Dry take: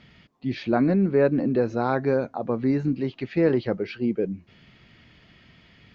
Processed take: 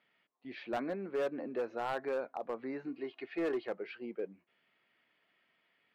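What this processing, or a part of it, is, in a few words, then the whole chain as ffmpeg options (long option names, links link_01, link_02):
walkie-talkie: -filter_complex "[0:a]asettb=1/sr,asplit=3[link_01][link_02][link_03];[link_01]atrim=end=2.864[link_04];[link_02]atrim=start=2.86:end=3.68,asetpts=PTS-STARTPTS,afade=type=in:duration=0.004:curve=qsin,afade=type=out:start_time=0.816:duration=0.004:curve=qsin,aecho=1:1:2.8:0.56,atrim=end_sample=36162[link_05];[link_03]atrim=start=3.676[link_06];[link_04][link_05]acrossfade=duration=0.004:curve1=hsin:curve2=qsin[link_07];[link_07][link_06]acrossfade=duration=0.004:curve1=qsin:curve2=hsin,highpass=510,lowpass=2700,asoftclip=type=hard:threshold=-21.5dB,agate=range=-8dB:threshold=-51dB:ratio=16:detection=peak,volume=-7.5dB"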